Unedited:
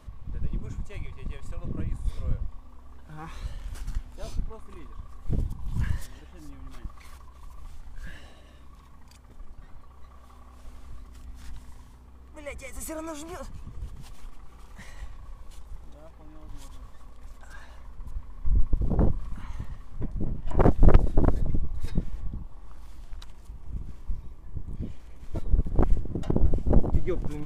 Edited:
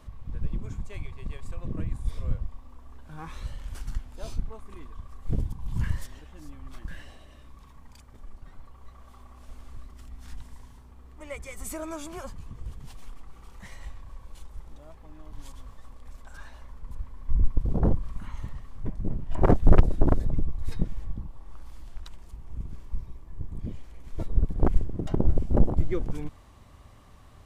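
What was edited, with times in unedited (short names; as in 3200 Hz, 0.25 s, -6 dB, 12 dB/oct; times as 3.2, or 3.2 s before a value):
6.88–8.04 cut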